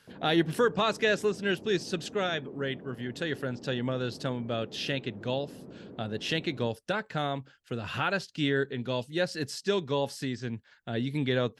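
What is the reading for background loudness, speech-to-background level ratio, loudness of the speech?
-48.0 LUFS, 17.0 dB, -31.0 LUFS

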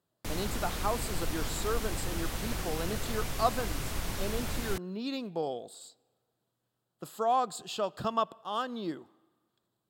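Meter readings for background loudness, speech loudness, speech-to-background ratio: -36.5 LUFS, -35.0 LUFS, 1.5 dB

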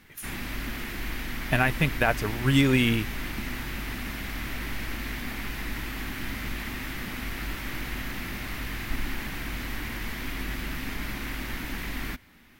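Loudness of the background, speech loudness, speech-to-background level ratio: -34.0 LUFS, -24.5 LUFS, 9.5 dB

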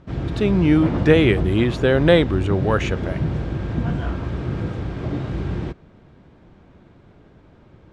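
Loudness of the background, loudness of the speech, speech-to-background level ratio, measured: -26.0 LUFS, -18.5 LUFS, 7.5 dB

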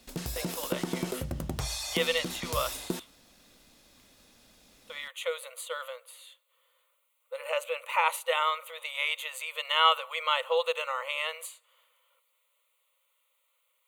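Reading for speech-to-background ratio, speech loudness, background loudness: 4.5 dB, -30.5 LUFS, -35.0 LUFS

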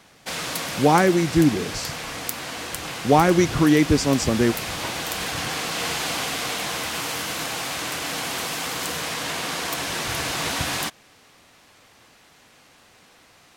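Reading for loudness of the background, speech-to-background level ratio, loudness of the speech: -27.0 LUFS, 7.5 dB, -19.5 LUFS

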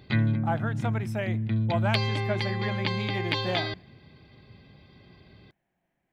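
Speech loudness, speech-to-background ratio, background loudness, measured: -33.5 LUFS, -5.0 dB, -28.5 LUFS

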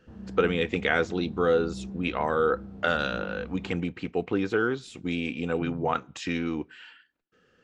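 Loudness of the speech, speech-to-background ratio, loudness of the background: -28.5 LUFS, 13.0 dB, -41.5 LUFS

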